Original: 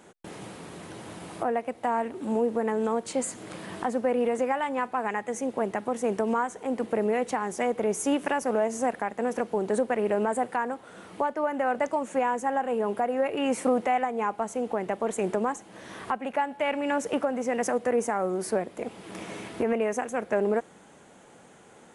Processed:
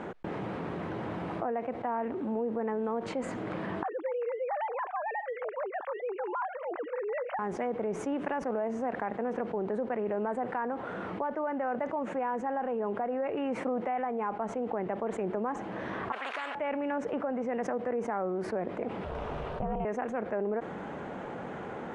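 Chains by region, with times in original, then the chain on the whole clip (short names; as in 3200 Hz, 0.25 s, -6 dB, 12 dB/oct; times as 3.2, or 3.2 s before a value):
3.83–7.39 sine-wave speech + HPF 670 Hz
16.12–16.55 ladder high-pass 910 Hz, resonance 25% + spectral compressor 4:1
19.04–19.85 Butterworth band-stop 2000 Hz, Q 2.6 + ring modulator 260 Hz
whole clip: LPF 1800 Hz 12 dB/oct; fast leveller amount 70%; gain -9 dB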